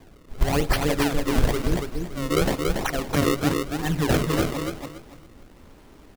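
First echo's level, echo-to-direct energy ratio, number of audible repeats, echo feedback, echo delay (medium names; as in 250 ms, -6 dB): -4.0 dB, -3.5 dB, 3, 24%, 283 ms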